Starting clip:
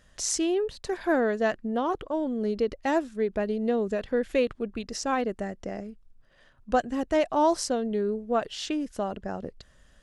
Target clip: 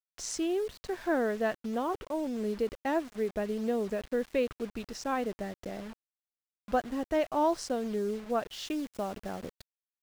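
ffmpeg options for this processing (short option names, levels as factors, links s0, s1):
-af "acrusher=bits=6:mix=0:aa=0.000001,asetnsamples=n=441:p=0,asendcmd='8.53 highshelf g -3.5',highshelf=f=6200:g=-8.5,volume=0.596"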